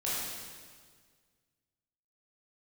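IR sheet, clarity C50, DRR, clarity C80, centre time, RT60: -3.0 dB, -9.0 dB, -0.5 dB, 118 ms, 1.7 s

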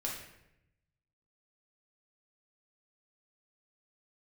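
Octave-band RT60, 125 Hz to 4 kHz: 1.5 s, 1.1 s, 0.90 s, 0.75 s, 0.85 s, 0.60 s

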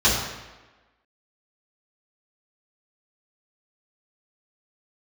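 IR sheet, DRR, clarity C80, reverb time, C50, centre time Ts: -9.0 dB, 4.5 dB, 1.2 s, 2.0 dB, 61 ms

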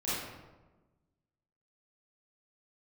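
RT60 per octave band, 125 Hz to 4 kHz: 1.6 s, 1.5 s, 1.3 s, 1.1 s, 0.85 s, 0.70 s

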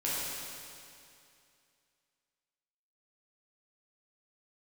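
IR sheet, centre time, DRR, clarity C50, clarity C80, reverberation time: 167 ms, -9.0 dB, -3.5 dB, -1.5 dB, 2.5 s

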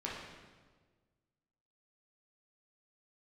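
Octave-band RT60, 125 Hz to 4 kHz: 1.9 s, 1.7 s, 1.6 s, 1.3 s, 1.2 s, 1.1 s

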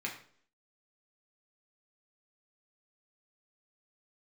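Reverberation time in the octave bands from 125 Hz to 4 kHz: 0.55 s, 0.60 s, 0.60 s, 0.50 s, 0.45 s, 0.45 s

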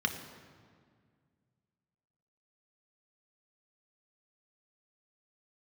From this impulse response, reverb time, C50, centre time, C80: 1.9 s, 9.0 dB, 23 ms, 10.0 dB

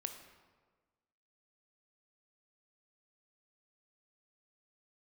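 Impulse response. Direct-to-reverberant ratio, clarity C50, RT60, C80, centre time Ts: 6.0 dB, 7.5 dB, 1.4 s, 9.5 dB, 23 ms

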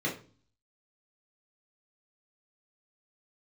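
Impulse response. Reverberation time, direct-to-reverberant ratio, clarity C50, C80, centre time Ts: 0.40 s, -5.0 dB, 9.0 dB, 15.0 dB, 24 ms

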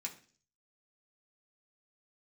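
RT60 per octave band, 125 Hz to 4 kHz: 0.65 s, 0.55 s, 0.50 s, 0.40 s, 0.45 s, 0.55 s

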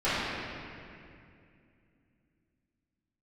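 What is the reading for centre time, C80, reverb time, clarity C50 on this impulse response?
176 ms, -2.5 dB, 2.5 s, -5.0 dB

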